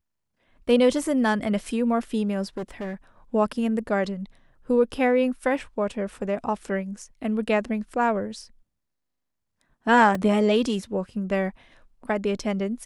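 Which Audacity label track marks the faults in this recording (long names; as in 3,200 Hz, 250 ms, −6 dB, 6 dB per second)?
2.570000	2.940000	clipping −27.5 dBFS
10.150000	10.150000	drop-out 2.7 ms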